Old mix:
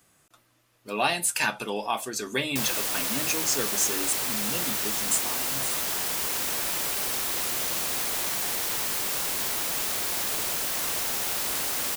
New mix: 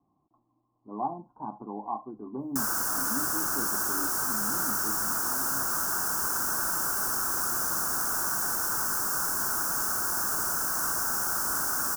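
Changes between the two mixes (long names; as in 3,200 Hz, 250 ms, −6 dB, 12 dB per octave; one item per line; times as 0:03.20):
speech: add Chebyshev low-pass with heavy ripple 1,100 Hz, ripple 9 dB
master: add drawn EQ curve 330 Hz 0 dB, 510 Hz −7 dB, 1,500 Hz +9 dB, 2,100 Hz −23 dB, 3,700 Hz −25 dB, 5,500 Hz 0 dB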